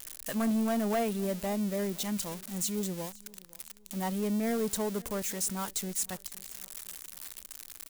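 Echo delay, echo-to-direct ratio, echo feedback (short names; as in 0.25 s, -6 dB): 0.514 s, -22.5 dB, 38%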